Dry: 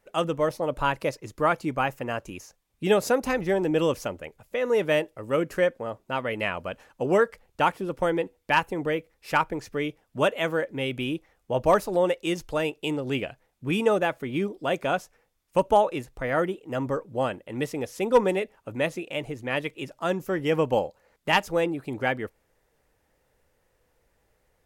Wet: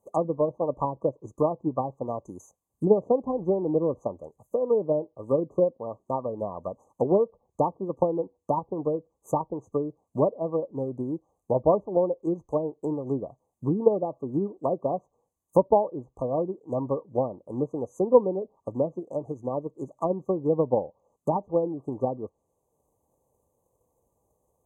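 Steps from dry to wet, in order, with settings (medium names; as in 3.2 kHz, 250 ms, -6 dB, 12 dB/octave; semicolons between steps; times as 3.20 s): transient shaper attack +7 dB, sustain -2 dB; high-pass 75 Hz; low-pass that closes with the level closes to 700 Hz, closed at -18.5 dBFS; brick-wall FIR band-stop 1.2–6 kHz; trim -2 dB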